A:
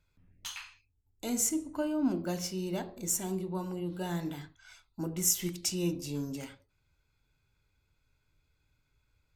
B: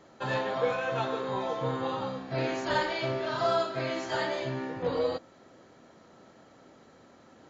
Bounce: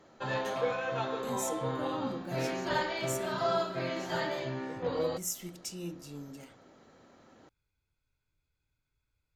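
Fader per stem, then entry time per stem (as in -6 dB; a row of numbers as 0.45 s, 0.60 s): -8.5 dB, -3.0 dB; 0.00 s, 0.00 s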